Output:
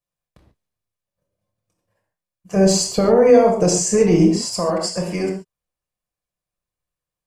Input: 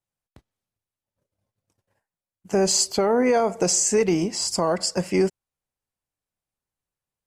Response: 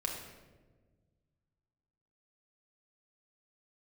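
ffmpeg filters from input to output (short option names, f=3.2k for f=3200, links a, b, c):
-filter_complex "[0:a]asettb=1/sr,asplit=3[a][b][c];[a]atrim=end=2.564[d];[b]atrim=start=2.56:end=4.36,asetpts=PTS-STARTPTS,afade=t=in:d=0.004:c=qsin,afade=t=out:st=1.796:d=0.004:c=qsin,lowshelf=f=470:g=9.5[e];[c]atrim=start=4.356[f];[d][e]acrossfade=d=0.004:c1=hsin:c2=qsin[g];[g][f]acrossfade=d=0.004:c1=qsin:c2=hsin[h];[1:a]atrim=start_sample=2205,atrim=end_sample=6615[i];[h][i]afir=irnorm=-1:irlink=0,volume=-1dB"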